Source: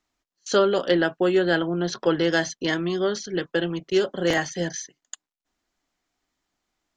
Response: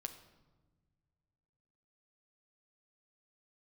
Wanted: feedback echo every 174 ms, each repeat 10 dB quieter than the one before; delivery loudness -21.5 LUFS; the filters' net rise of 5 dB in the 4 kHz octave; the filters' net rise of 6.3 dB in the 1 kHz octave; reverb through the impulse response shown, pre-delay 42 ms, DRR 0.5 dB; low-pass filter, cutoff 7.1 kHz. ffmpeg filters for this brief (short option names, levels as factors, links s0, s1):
-filter_complex "[0:a]lowpass=7100,equalizer=f=1000:t=o:g=8.5,equalizer=f=4000:t=o:g=6.5,aecho=1:1:174|348|522|696:0.316|0.101|0.0324|0.0104,asplit=2[s0][s1];[1:a]atrim=start_sample=2205,adelay=42[s2];[s1][s2]afir=irnorm=-1:irlink=0,volume=1.33[s3];[s0][s3]amix=inputs=2:normalize=0,volume=0.668"